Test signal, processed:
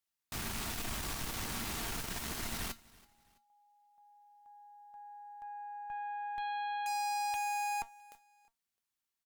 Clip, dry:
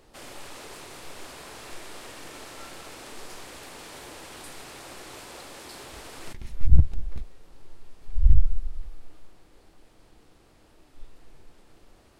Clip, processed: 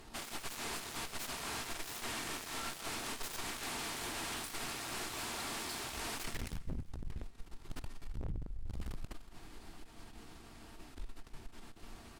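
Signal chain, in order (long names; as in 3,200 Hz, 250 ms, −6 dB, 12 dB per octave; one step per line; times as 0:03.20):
parametric band 510 Hz −13 dB 0.39 octaves
downward compressor 10 to 1, threshold −30 dBFS
tuned comb filter 230 Hz, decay 0.16 s, harmonics all, mix 60%
wave folding −38 dBFS
harmonic generator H 3 −22 dB, 4 −13 dB, 5 −16 dB, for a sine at −38 dBFS
repeating echo 330 ms, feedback 36%, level −23 dB
level +6.5 dB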